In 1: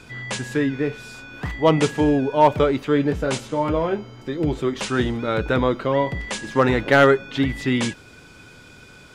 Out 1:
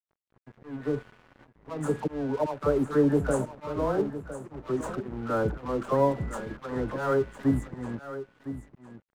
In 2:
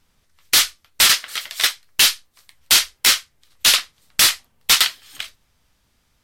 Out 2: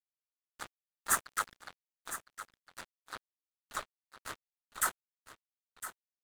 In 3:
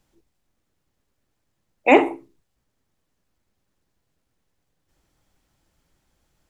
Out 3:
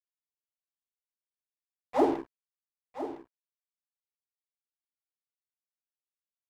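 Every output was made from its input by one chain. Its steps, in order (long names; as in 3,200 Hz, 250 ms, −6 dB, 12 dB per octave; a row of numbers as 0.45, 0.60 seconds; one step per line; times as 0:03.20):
volume swells 370 ms
low-pass that shuts in the quiet parts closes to 640 Hz, open at −20.5 dBFS
inverse Chebyshev band-stop filter 2,200–5,400 Hz, stop band 40 dB
flat-topped bell 3,400 Hz +12 dB
all-pass dispersion lows, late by 79 ms, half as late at 880 Hz
dead-zone distortion −41.5 dBFS
on a send: single-tap delay 1,009 ms −12 dB
on the sum: normalise the peak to −12 dBFS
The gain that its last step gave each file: −2.0, +9.5, +3.5 decibels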